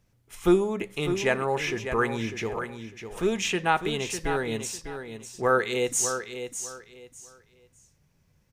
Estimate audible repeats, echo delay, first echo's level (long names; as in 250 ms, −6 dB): 3, 601 ms, −9.0 dB